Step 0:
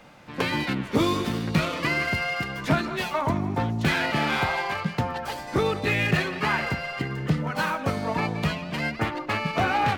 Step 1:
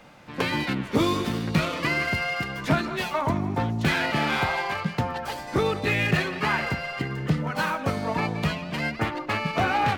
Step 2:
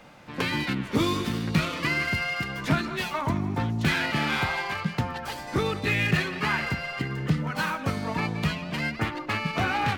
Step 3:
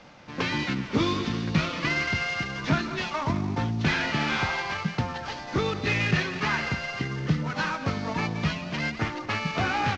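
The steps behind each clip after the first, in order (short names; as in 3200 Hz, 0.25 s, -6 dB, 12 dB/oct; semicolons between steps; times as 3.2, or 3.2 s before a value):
nothing audible
dynamic EQ 610 Hz, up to -6 dB, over -37 dBFS, Q 1
CVSD 32 kbps; echo 0.224 s -18.5 dB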